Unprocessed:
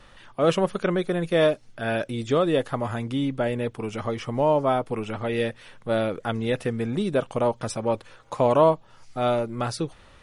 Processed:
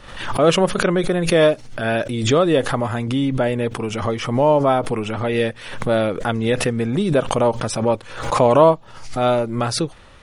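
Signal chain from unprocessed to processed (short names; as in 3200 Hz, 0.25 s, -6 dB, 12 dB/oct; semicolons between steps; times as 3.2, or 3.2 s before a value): wow and flutter 23 cents; backwards sustainer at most 72 dB/s; gain +5.5 dB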